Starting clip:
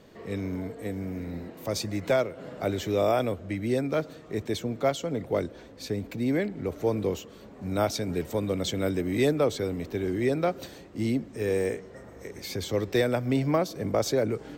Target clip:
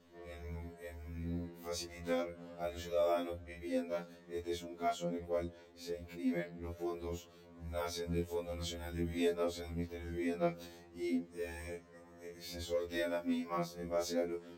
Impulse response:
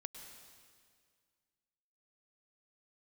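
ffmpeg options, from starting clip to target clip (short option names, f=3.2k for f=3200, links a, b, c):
-af "afftfilt=real='re':imag='-im':win_size=2048:overlap=0.75,afftfilt=real='re*2*eq(mod(b,4),0)':imag='im*2*eq(mod(b,4),0)':win_size=2048:overlap=0.75,volume=-6dB"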